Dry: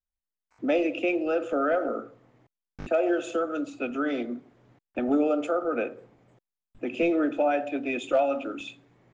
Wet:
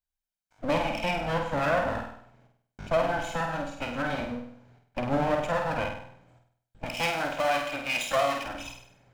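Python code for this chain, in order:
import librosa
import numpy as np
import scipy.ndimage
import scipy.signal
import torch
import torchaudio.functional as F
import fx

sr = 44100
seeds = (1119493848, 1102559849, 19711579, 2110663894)

p1 = fx.lower_of_two(x, sr, delay_ms=1.3)
p2 = fx.tilt_eq(p1, sr, slope=3.0, at=(6.86, 8.46))
y = p2 + fx.room_flutter(p2, sr, wall_m=8.5, rt60_s=0.61, dry=0)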